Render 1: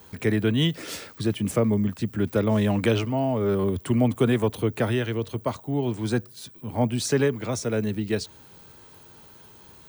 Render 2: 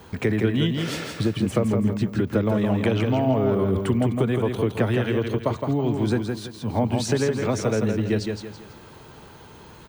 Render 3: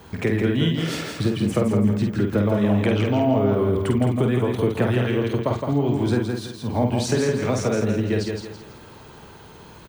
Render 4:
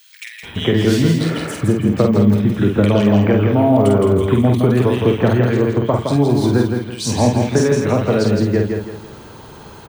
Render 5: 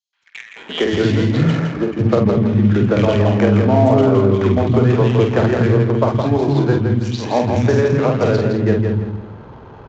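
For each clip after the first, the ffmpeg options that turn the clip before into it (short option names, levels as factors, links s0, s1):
-af "acompressor=threshold=0.0501:ratio=6,lowpass=f=3000:p=1,aecho=1:1:165|330|495|660:0.562|0.197|0.0689|0.0241,volume=2.24"
-filter_complex "[0:a]asplit=2[s0][s1];[s1]adelay=49,volume=0.596[s2];[s0][s2]amix=inputs=2:normalize=0"
-filter_complex "[0:a]acrossover=split=2300[s0][s1];[s0]adelay=430[s2];[s2][s1]amix=inputs=2:normalize=0,volume=2.11"
-filter_complex "[0:a]acrossover=split=260|5700[s0][s1][s2];[s1]adelay=130[s3];[s0]adelay=370[s4];[s4][s3][s2]amix=inputs=3:normalize=0,adynamicsmooth=sensitivity=3.5:basefreq=1100,aresample=16000,aresample=44100,volume=1.19"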